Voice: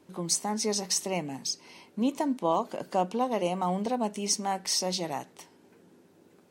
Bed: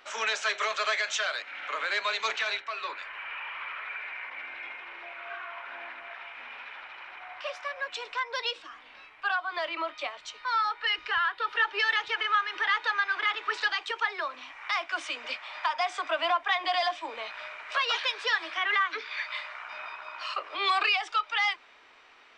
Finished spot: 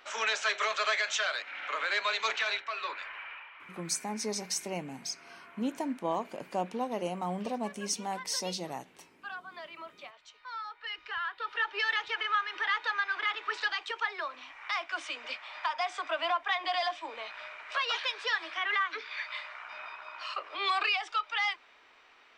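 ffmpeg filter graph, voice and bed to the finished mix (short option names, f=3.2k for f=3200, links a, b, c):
-filter_complex "[0:a]adelay=3600,volume=-5.5dB[a];[1:a]volume=8.5dB,afade=t=out:st=3.06:d=0.43:silence=0.251189,afade=t=in:st=10.75:d=1.15:silence=0.334965[b];[a][b]amix=inputs=2:normalize=0"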